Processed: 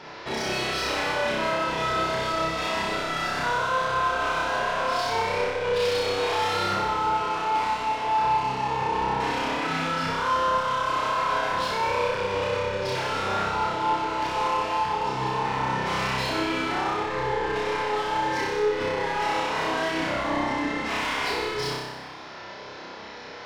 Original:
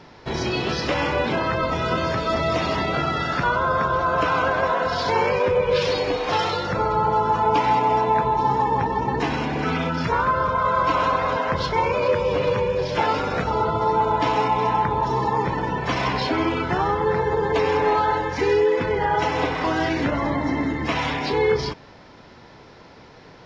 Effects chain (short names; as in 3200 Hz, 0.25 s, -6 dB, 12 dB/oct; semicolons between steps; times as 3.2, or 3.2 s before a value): limiter -18.5 dBFS, peak gain reduction 9.5 dB; overdrive pedal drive 18 dB, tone 6300 Hz, clips at -18.5 dBFS; on a send: flutter echo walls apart 5.3 m, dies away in 1.1 s; on the sum: gain -7 dB